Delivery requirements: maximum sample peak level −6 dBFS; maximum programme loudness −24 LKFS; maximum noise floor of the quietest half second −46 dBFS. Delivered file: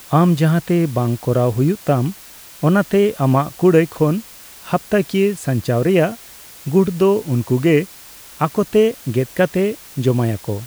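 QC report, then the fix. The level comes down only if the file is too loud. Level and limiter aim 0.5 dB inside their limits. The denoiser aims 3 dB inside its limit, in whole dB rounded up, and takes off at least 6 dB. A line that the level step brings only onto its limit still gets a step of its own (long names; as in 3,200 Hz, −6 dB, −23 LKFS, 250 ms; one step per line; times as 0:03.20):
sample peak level −2.0 dBFS: out of spec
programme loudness −17.5 LKFS: out of spec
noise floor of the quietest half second −40 dBFS: out of spec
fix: level −7 dB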